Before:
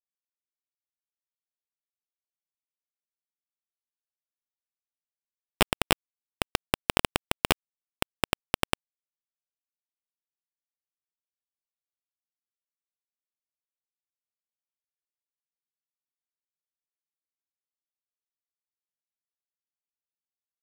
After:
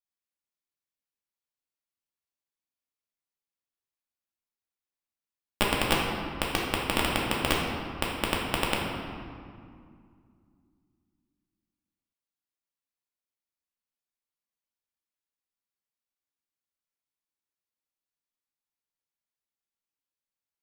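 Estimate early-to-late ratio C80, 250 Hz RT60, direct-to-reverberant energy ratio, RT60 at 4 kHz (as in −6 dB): 2.5 dB, 3.3 s, −4.0 dB, 1.4 s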